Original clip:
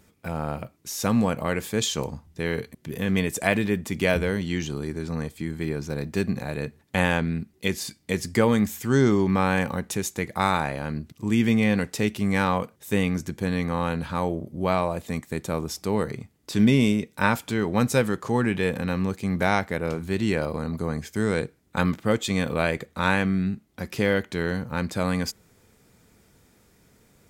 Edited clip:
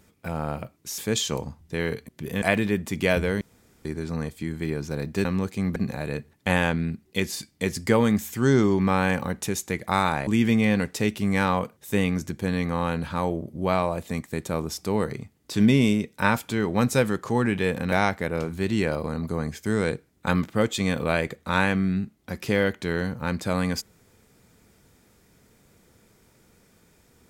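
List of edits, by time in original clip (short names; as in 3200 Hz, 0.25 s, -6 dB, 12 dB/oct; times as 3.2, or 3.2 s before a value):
0.98–1.64 cut
3.08–3.41 cut
4.4–4.84 room tone
10.75–11.26 cut
18.91–19.42 move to 6.24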